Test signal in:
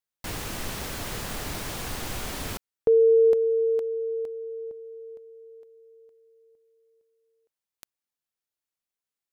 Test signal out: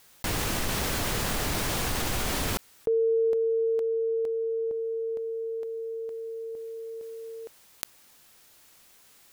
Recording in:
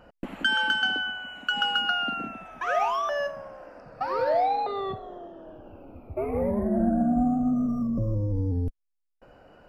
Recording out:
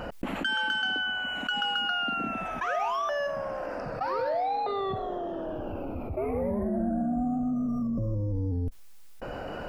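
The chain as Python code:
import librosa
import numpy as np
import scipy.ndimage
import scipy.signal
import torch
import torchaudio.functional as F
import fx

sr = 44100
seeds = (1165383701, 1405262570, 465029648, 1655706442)

y = fx.env_flatten(x, sr, amount_pct=70)
y = y * librosa.db_to_amplitude(-6.5)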